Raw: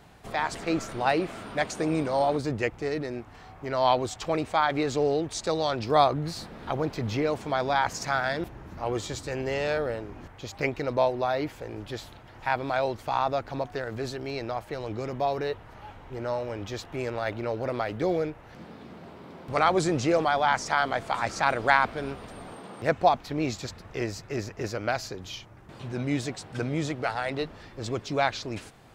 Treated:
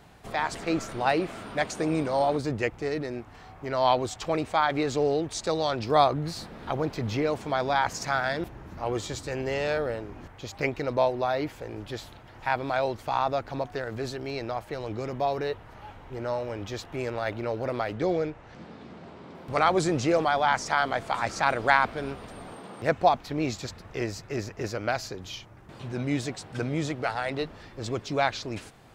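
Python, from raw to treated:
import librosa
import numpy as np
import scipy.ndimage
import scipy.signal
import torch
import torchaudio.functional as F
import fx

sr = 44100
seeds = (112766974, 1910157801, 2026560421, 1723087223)

y = fx.lowpass(x, sr, hz=8300.0, slope=24, at=(17.93, 19.35))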